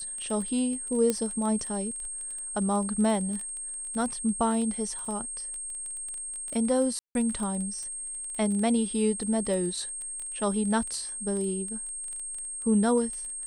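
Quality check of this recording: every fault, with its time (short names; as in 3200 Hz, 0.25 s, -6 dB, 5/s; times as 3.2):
crackle 16/s -32 dBFS
tone 8500 Hz -34 dBFS
1.1 pop -12 dBFS
5.05 gap 4.1 ms
6.99–7.15 gap 0.161 s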